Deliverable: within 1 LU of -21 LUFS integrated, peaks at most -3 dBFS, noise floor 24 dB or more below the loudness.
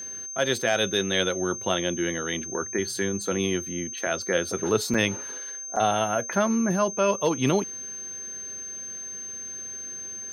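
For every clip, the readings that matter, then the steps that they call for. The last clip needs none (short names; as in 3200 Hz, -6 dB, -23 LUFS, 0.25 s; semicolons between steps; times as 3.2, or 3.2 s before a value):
dropouts 2; longest dropout 5.4 ms; steady tone 6300 Hz; tone level -34 dBFS; loudness -26.5 LUFS; peak -9.0 dBFS; loudness target -21.0 LUFS
-> interpolate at 4.94/5.76, 5.4 ms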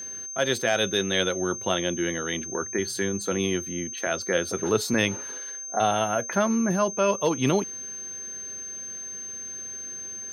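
dropouts 0; steady tone 6300 Hz; tone level -34 dBFS
-> notch 6300 Hz, Q 30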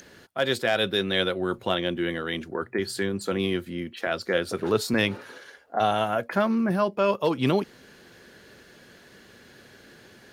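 steady tone none; loudness -26.0 LUFS; peak -9.5 dBFS; loudness target -21.0 LUFS
-> gain +5 dB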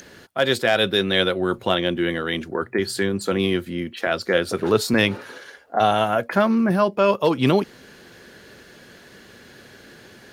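loudness -21.0 LUFS; peak -4.5 dBFS; noise floor -48 dBFS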